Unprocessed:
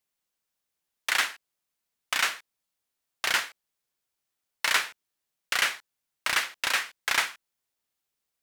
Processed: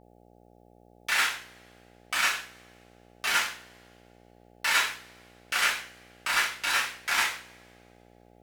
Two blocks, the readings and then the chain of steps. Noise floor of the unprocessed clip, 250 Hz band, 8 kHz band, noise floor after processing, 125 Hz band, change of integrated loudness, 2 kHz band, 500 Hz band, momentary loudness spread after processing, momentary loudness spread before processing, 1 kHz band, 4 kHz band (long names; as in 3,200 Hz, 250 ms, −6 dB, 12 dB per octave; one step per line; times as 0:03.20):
−84 dBFS, +2.0 dB, +0.5 dB, −58 dBFS, can't be measured, 0.0 dB, +0.5 dB, −0.5 dB, 14 LU, 10 LU, +2.0 dB, −0.5 dB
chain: coupled-rooms reverb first 0.4 s, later 2.1 s, from −27 dB, DRR −8 dB
hum with harmonics 60 Hz, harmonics 14, −49 dBFS −1 dB per octave
level −8 dB